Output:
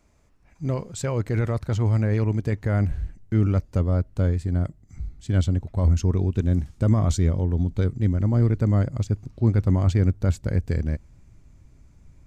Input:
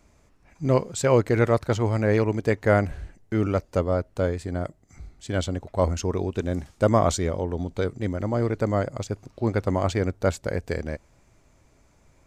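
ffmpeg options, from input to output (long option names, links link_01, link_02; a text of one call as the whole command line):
ffmpeg -i in.wav -af "alimiter=limit=-14.5dB:level=0:latency=1:release=12,asubboost=boost=5:cutoff=240,volume=-4dB" out.wav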